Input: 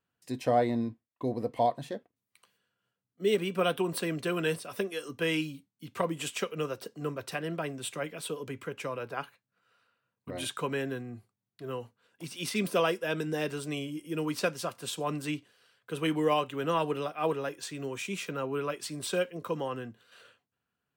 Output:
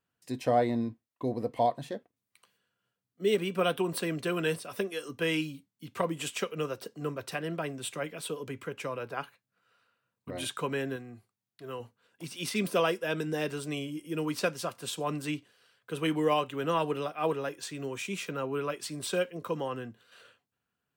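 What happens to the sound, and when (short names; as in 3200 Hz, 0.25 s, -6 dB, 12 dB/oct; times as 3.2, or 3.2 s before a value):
10.96–11.8 low shelf 470 Hz -6 dB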